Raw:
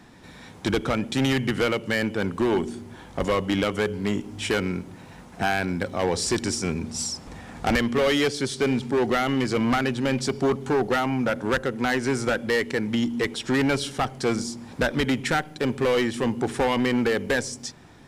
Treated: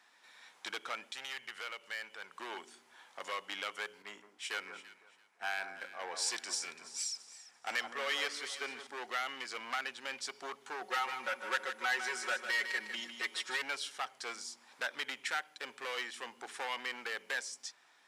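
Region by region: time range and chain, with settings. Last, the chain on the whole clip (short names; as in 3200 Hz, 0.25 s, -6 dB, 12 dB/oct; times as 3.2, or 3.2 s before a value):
1.11–2.4 bell 280 Hz -9.5 dB 0.54 oct + compressor 1.5:1, threshold -33 dBFS
4.02–8.87 echo with dull and thin repeats by turns 0.169 s, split 1500 Hz, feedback 66%, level -6.5 dB + three-band expander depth 70%
10.81–13.62 comb 5.4 ms, depth 97% + feedback echo 0.153 s, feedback 32%, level -8.5 dB
whole clip: HPF 1100 Hz 12 dB/oct; high shelf 9400 Hz -4.5 dB; gain -8.5 dB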